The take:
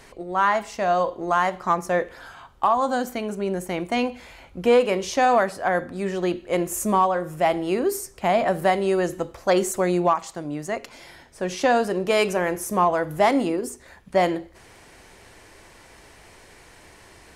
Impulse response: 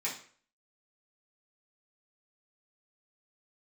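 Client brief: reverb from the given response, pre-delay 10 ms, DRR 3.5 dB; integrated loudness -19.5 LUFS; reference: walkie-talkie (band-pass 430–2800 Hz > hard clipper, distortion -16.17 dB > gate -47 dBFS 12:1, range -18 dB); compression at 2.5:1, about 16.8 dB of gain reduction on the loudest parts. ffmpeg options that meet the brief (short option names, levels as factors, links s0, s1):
-filter_complex "[0:a]acompressor=threshold=0.00891:ratio=2.5,asplit=2[s0][s1];[1:a]atrim=start_sample=2205,adelay=10[s2];[s1][s2]afir=irnorm=-1:irlink=0,volume=0.398[s3];[s0][s3]amix=inputs=2:normalize=0,highpass=430,lowpass=2800,asoftclip=type=hard:threshold=0.0299,agate=range=0.126:threshold=0.00447:ratio=12,volume=10.6"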